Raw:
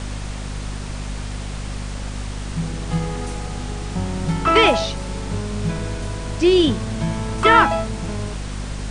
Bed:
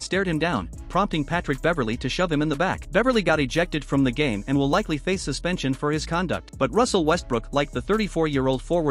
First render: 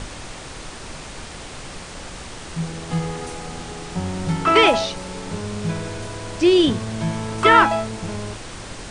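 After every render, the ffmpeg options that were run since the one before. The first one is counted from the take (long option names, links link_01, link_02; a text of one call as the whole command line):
ffmpeg -i in.wav -af "bandreject=frequency=50:width_type=h:width=6,bandreject=frequency=100:width_type=h:width=6,bandreject=frequency=150:width_type=h:width=6,bandreject=frequency=200:width_type=h:width=6,bandreject=frequency=250:width_type=h:width=6" out.wav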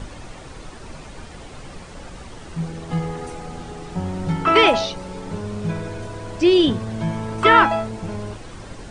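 ffmpeg -i in.wav -af "afftdn=noise_reduction=9:noise_floor=-36" out.wav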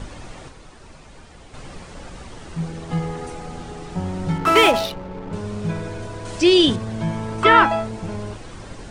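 ffmpeg -i in.wav -filter_complex "[0:a]asettb=1/sr,asplit=3[link_01][link_02][link_03];[link_01]atrim=end=0.484[link_04];[link_02]atrim=start=0.48:end=1.54,asetpts=PTS-STARTPTS,afade=type=in:duration=0.004:curve=qsin,afade=type=out:start_time=1.056:duration=0.004:curve=qsin,acrossover=split=110|560|1300[link_05][link_06][link_07][link_08];[link_05]acompressor=threshold=-45dB:ratio=3[link_09];[link_06]acompressor=threshold=-51dB:ratio=3[link_10];[link_07]acompressor=threshold=-54dB:ratio=3[link_11];[link_08]acompressor=threshold=-52dB:ratio=3[link_12];[link_09][link_10][link_11][link_12]amix=inputs=4:normalize=0[link_13];[link_03]atrim=start=1.536[link_14];[link_04][link_13]acrossfade=duration=0.004:curve1=hsin:curve2=qsin[link_15];[link_15][link_14]acrossfade=duration=0.004:curve1=qsin:curve2=hsin,asettb=1/sr,asplit=3[link_16][link_17][link_18];[link_16]atrim=end=4.384[link_19];[link_17]atrim=start=4.38:end=5.33,asetpts=PTS-STARTPTS,afade=type=in:duration=0.004:curve=qsin,afade=type=out:start_time=0.946:duration=0.004:curve=qsin,adynamicsmooth=sensitivity=6:basefreq=740[link_20];[link_18]atrim=start=5.326[link_21];[link_19][link_20]acrossfade=duration=0.004:curve1=hsin:curve2=qsin[link_22];[link_22][link_21]acrossfade=duration=0.004:curve1=qsin:curve2=hsin,asettb=1/sr,asplit=3[link_23][link_24][link_25];[link_23]atrim=end=6.254[link_26];[link_24]atrim=start=6.25:end=6.76,asetpts=PTS-STARTPTS,afade=type=in:duration=0.004:curve=qsin,afade=type=out:start_time=0.506:duration=0.004:curve=qsin,highshelf=frequency=3000:gain=10.5[link_27];[link_25]atrim=start=6.756[link_28];[link_26][link_27]acrossfade=duration=0.004:curve1=hsin:curve2=qsin[link_29];[link_29][link_28]acrossfade=duration=0.004:curve1=qsin:curve2=hsin" out.wav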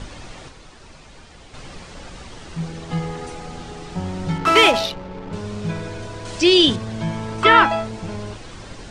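ffmpeg -i in.wav -af "lowpass=4600,aemphasis=mode=production:type=75fm" out.wav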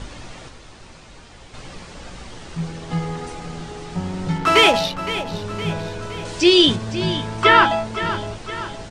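ffmpeg -i in.wav -filter_complex "[0:a]asplit=2[link_01][link_02];[link_02]adelay=17,volume=-11dB[link_03];[link_01][link_03]amix=inputs=2:normalize=0,aecho=1:1:515|1030|1545|2060|2575:0.237|0.126|0.0666|0.0353|0.0187" out.wav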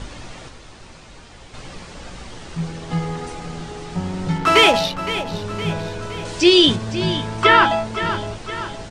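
ffmpeg -i in.wav -af "volume=1dB,alimiter=limit=-2dB:level=0:latency=1" out.wav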